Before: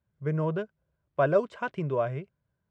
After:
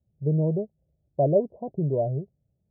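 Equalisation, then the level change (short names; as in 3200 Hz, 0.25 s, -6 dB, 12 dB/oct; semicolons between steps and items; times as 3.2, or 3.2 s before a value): steep low-pass 800 Hz 72 dB/oct; low shelf 370 Hz +7 dB; 0.0 dB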